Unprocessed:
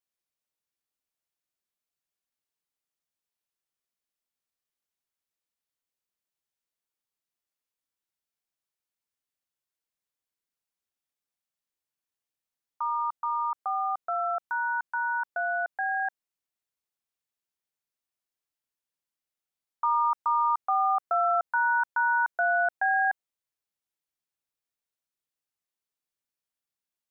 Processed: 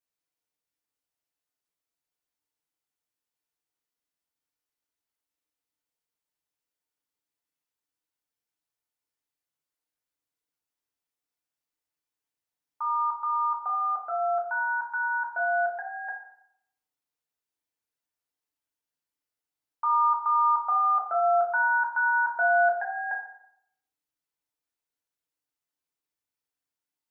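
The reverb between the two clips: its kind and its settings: FDN reverb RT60 0.72 s, low-frequency decay 0.8×, high-frequency decay 0.5×, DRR -2 dB; trim -3.5 dB

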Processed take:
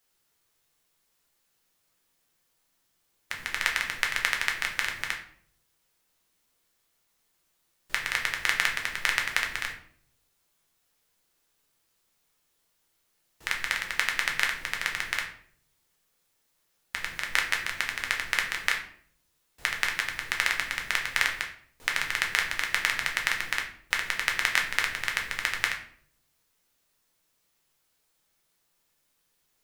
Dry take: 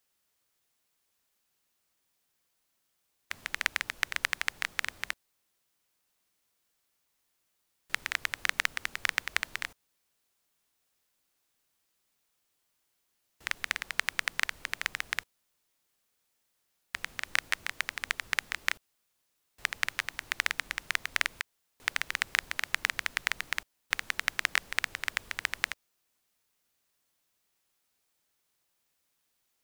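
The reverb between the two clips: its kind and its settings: simulated room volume 71 m³, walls mixed, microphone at 0.69 m; trim +2 dB

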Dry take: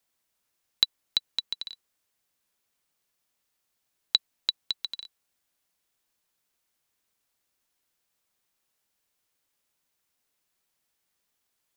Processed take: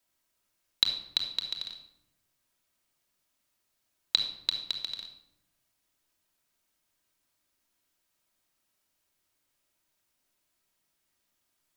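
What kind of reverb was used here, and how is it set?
simulated room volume 2400 m³, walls furnished, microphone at 2.8 m; trim -1.5 dB

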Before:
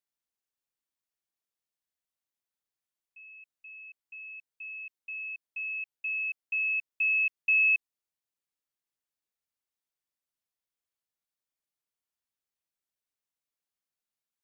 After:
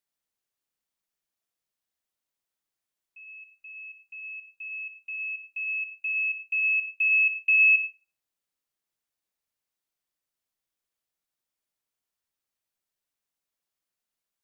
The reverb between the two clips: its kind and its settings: algorithmic reverb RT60 0.88 s, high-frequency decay 0.25×, pre-delay 30 ms, DRR 7.5 dB; trim +3 dB

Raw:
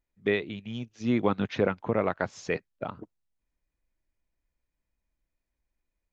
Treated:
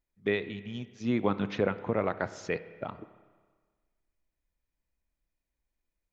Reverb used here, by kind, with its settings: spring tank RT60 1.5 s, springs 30/56 ms, chirp 50 ms, DRR 13.5 dB; trim -2.5 dB

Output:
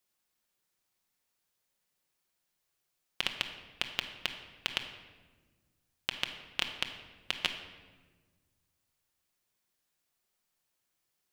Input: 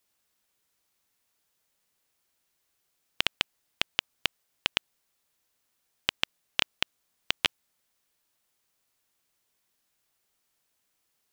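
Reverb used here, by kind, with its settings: simulated room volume 1100 m³, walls mixed, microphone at 0.94 m; trim -6 dB

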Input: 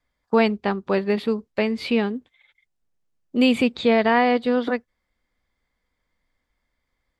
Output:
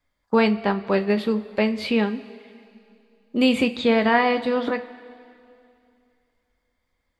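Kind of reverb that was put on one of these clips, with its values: two-slope reverb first 0.22 s, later 2.6 s, from -19 dB, DRR 6.5 dB

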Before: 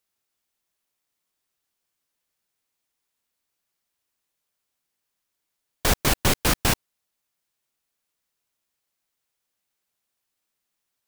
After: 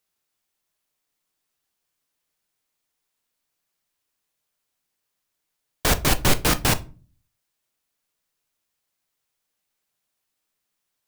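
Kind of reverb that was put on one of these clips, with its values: simulated room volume 200 m³, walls furnished, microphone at 0.47 m; trim +1 dB

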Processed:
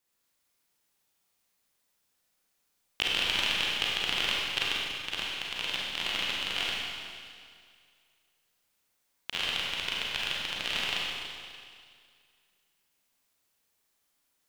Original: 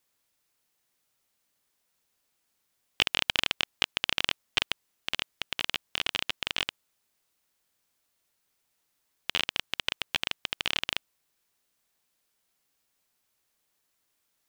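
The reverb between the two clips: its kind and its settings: Schroeder reverb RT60 2.1 s, combs from 32 ms, DRR -5 dB; trim -5.5 dB

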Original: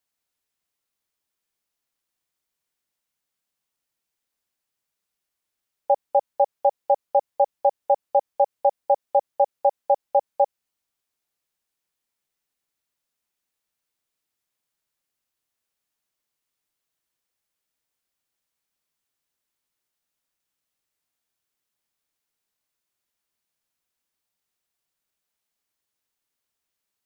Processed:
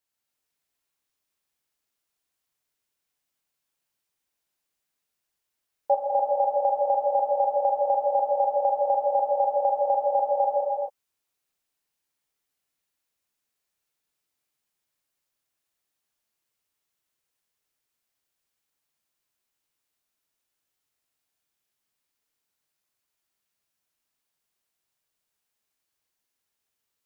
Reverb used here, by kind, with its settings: gated-style reverb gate 460 ms flat, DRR -2.5 dB; trim -3.5 dB

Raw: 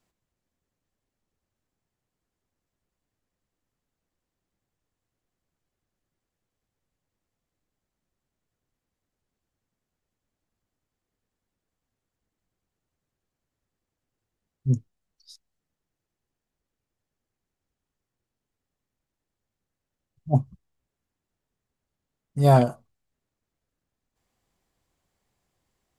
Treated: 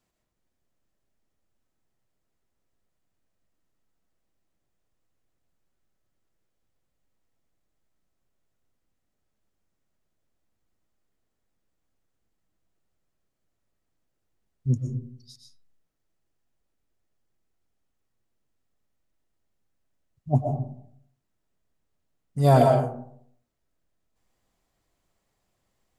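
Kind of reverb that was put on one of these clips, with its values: algorithmic reverb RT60 0.65 s, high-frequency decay 0.4×, pre-delay 80 ms, DRR 2 dB; trim -1 dB

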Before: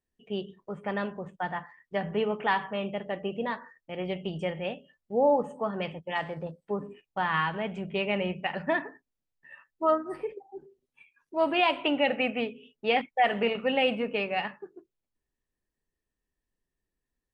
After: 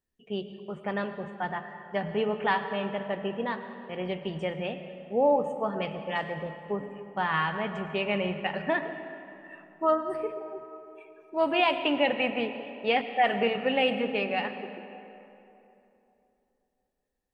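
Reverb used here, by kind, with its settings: algorithmic reverb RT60 3.1 s, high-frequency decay 0.55×, pre-delay 70 ms, DRR 9.5 dB

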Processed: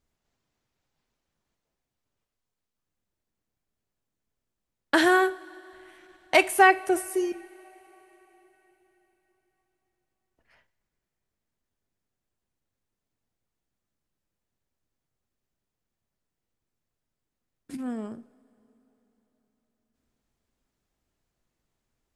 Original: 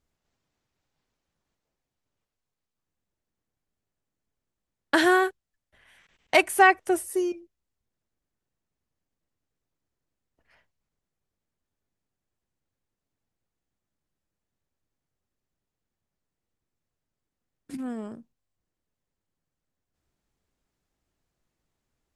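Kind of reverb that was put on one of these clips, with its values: two-slope reverb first 0.48 s, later 4.3 s, from -18 dB, DRR 13.5 dB

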